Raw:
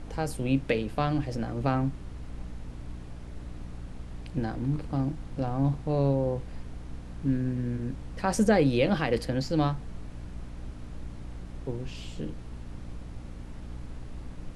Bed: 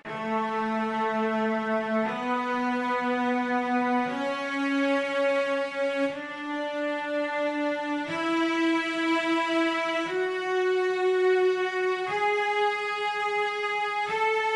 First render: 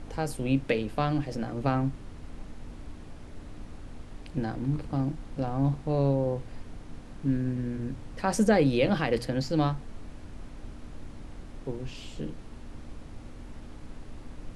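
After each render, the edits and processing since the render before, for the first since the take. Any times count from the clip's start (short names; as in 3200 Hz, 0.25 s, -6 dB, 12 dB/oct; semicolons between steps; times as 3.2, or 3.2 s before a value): de-hum 60 Hz, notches 3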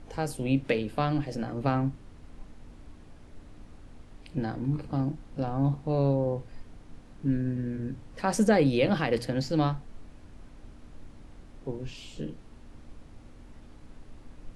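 noise print and reduce 6 dB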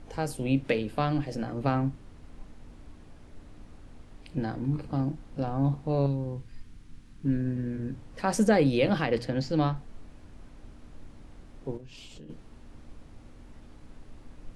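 6.06–7.25 bell 630 Hz -14.5 dB 1.5 oct; 9.05–9.76 air absorption 53 m; 11.77–12.3 compressor 8:1, threshold -42 dBFS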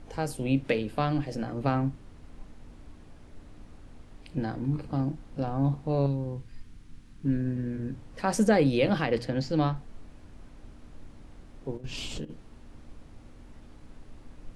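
11.84–12.25 gain +11 dB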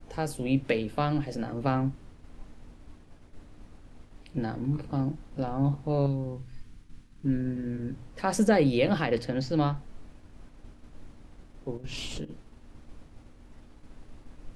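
de-hum 62.58 Hz, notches 3; expander -44 dBFS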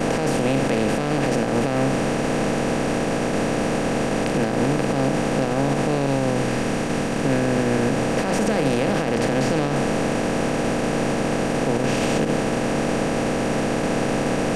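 per-bin compression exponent 0.2; limiter -11 dBFS, peak gain reduction 8.5 dB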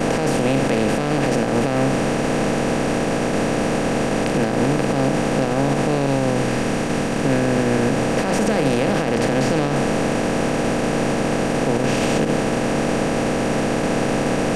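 gain +2 dB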